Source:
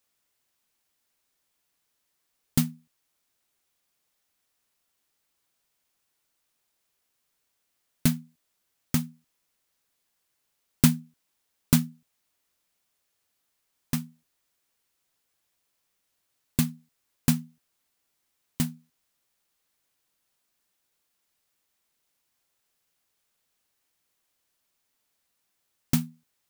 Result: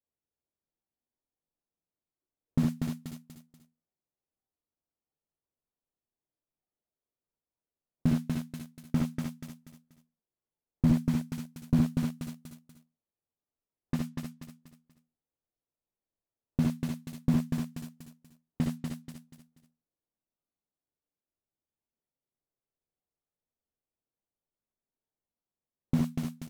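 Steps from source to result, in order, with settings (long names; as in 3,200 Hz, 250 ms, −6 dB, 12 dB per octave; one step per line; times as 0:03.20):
low-pass that shuts in the quiet parts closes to 600 Hz, open at −25 dBFS
ambience of single reflections 59 ms −7.5 dB, 72 ms −6 dB
in parallel at −10.5 dB: bit reduction 4 bits
on the sum: repeating echo 241 ms, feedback 33%, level −7 dB
noise reduction from a noise print of the clip's start 6 dB
slew-rate limiting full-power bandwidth 43 Hz
level −4 dB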